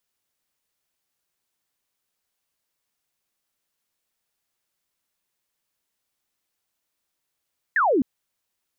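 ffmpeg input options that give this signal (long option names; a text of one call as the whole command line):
ffmpeg -f lavfi -i "aevalsrc='0.15*clip(t/0.002,0,1)*clip((0.26-t)/0.002,0,1)*sin(2*PI*1900*0.26/log(230/1900)*(exp(log(230/1900)*t/0.26)-1))':duration=0.26:sample_rate=44100" out.wav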